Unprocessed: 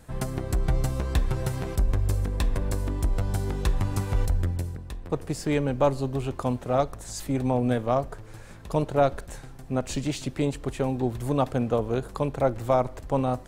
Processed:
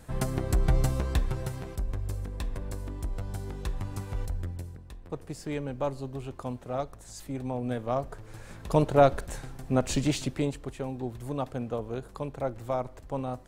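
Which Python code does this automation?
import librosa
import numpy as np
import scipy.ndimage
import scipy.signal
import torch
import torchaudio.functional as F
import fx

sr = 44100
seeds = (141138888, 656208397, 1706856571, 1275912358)

y = fx.gain(x, sr, db=fx.line((0.87, 0.5), (1.74, -8.5), (7.57, -8.5), (8.69, 2.0), (10.14, 2.0), (10.74, -8.0)))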